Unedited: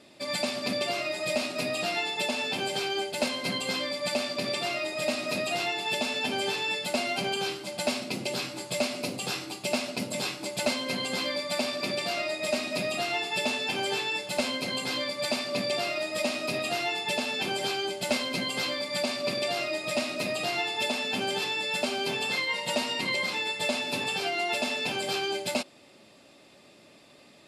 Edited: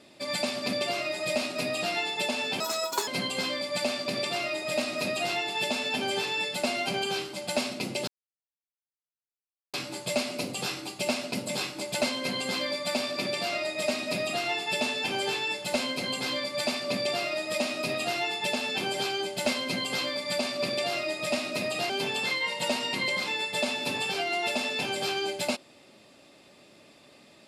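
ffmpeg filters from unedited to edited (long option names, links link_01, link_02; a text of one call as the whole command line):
ffmpeg -i in.wav -filter_complex "[0:a]asplit=5[link_01][link_02][link_03][link_04][link_05];[link_01]atrim=end=2.604[link_06];[link_02]atrim=start=2.6:end=3.38,asetpts=PTS-STARTPTS,asetrate=72324,aresample=44100,atrim=end_sample=20974,asetpts=PTS-STARTPTS[link_07];[link_03]atrim=start=3.376:end=8.38,asetpts=PTS-STARTPTS,afade=type=out:start_time=5:duration=0.004:curve=hsin,apad=pad_dur=1.66[link_08];[link_04]atrim=start=8.38:end=20.542,asetpts=PTS-STARTPTS,afade=type=in:duration=0.004:curve=hsin[link_09];[link_05]atrim=start=21.958[link_10];[link_06][link_07]acrossfade=duration=0.004:curve1=hsin:curve2=hsin[link_11];[link_08][link_09]concat=n=2:v=0:a=1[link_12];[link_11][link_12]acrossfade=duration=0.004:curve1=hsin:curve2=hsin[link_13];[link_13][link_10]acrossfade=duration=0.004:curve1=hsin:curve2=hsin" out.wav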